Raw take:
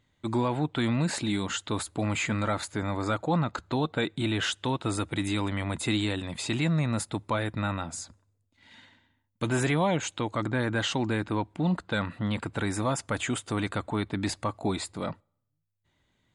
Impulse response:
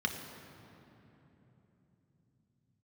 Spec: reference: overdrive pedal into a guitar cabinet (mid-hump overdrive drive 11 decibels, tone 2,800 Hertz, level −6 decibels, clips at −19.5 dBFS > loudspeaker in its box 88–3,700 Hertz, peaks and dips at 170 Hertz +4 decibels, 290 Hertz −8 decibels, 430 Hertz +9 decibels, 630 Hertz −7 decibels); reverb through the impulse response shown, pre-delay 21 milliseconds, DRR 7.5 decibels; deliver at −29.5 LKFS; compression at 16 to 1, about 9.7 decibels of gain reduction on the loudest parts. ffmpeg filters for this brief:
-filter_complex "[0:a]acompressor=threshold=-32dB:ratio=16,asplit=2[link_01][link_02];[1:a]atrim=start_sample=2205,adelay=21[link_03];[link_02][link_03]afir=irnorm=-1:irlink=0,volume=-13.5dB[link_04];[link_01][link_04]amix=inputs=2:normalize=0,asplit=2[link_05][link_06];[link_06]highpass=frequency=720:poles=1,volume=11dB,asoftclip=type=tanh:threshold=-19.5dB[link_07];[link_05][link_07]amix=inputs=2:normalize=0,lowpass=frequency=2800:poles=1,volume=-6dB,highpass=88,equalizer=frequency=170:width_type=q:width=4:gain=4,equalizer=frequency=290:width_type=q:width=4:gain=-8,equalizer=frequency=430:width_type=q:width=4:gain=9,equalizer=frequency=630:width_type=q:width=4:gain=-7,lowpass=frequency=3700:width=0.5412,lowpass=frequency=3700:width=1.3066,volume=6.5dB"

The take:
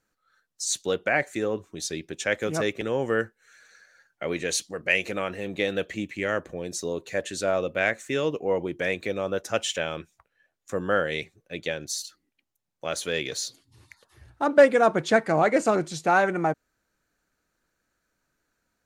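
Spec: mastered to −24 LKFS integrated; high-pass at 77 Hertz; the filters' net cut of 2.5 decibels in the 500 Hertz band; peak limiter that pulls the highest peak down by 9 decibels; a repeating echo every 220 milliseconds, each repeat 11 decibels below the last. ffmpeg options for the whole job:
ffmpeg -i in.wav -af "highpass=77,equalizer=frequency=500:width_type=o:gain=-3,alimiter=limit=-15.5dB:level=0:latency=1,aecho=1:1:220|440|660:0.282|0.0789|0.0221,volume=5.5dB" out.wav

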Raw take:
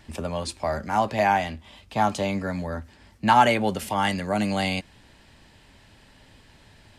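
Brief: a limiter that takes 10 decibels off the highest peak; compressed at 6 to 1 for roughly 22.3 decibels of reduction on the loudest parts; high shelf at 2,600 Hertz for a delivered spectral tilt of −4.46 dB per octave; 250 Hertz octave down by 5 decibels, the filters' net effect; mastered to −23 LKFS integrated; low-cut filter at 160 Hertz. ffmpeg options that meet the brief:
ffmpeg -i in.wav -af "highpass=160,equalizer=frequency=250:width_type=o:gain=-5,highshelf=frequency=2600:gain=-3.5,acompressor=threshold=-38dB:ratio=6,volume=21.5dB,alimiter=limit=-12.5dB:level=0:latency=1" out.wav

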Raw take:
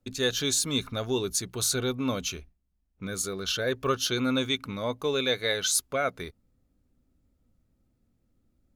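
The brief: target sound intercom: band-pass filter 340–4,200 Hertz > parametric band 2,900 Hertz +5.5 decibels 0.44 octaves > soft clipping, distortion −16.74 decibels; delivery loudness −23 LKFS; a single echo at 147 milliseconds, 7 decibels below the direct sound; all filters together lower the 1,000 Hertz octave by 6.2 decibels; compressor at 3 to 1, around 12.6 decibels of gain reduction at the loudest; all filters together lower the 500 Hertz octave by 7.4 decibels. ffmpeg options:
ffmpeg -i in.wav -af "equalizer=frequency=500:width_type=o:gain=-6,equalizer=frequency=1000:width_type=o:gain=-7.5,acompressor=threshold=-40dB:ratio=3,highpass=340,lowpass=4200,equalizer=frequency=2900:width_type=o:width=0.44:gain=5.5,aecho=1:1:147:0.447,asoftclip=threshold=-32.5dB,volume=19.5dB" out.wav

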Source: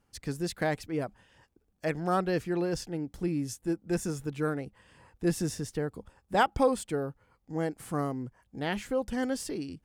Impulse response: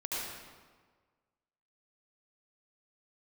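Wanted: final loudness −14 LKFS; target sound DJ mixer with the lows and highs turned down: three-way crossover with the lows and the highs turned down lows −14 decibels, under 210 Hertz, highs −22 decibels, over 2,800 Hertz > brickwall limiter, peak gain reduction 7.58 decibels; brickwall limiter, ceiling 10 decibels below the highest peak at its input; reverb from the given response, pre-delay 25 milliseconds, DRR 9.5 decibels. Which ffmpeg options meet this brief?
-filter_complex "[0:a]alimiter=limit=-22.5dB:level=0:latency=1,asplit=2[link_01][link_02];[1:a]atrim=start_sample=2205,adelay=25[link_03];[link_02][link_03]afir=irnorm=-1:irlink=0,volume=-14dB[link_04];[link_01][link_04]amix=inputs=2:normalize=0,acrossover=split=210 2800:gain=0.2 1 0.0794[link_05][link_06][link_07];[link_05][link_06][link_07]amix=inputs=3:normalize=0,volume=25dB,alimiter=limit=-2.5dB:level=0:latency=1"

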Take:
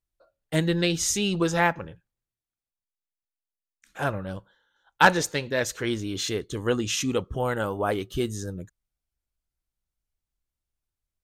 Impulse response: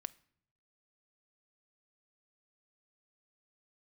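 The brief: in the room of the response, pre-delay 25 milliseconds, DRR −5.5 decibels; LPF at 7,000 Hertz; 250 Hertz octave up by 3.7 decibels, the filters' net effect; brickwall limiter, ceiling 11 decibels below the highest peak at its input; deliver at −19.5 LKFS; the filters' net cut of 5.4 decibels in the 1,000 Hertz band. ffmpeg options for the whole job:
-filter_complex "[0:a]lowpass=7000,equalizer=frequency=250:width_type=o:gain=6,equalizer=frequency=1000:width_type=o:gain=-7.5,alimiter=limit=-16.5dB:level=0:latency=1,asplit=2[link_01][link_02];[1:a]atrim=start_sample=2205,adelay=25[link_03];[link_02][link_03]afir=irnorm=-1:irlink=0,volume=9dB[link_04];[link_01][link_04]amix=inputs=2:normalize=0,volume=2dB"

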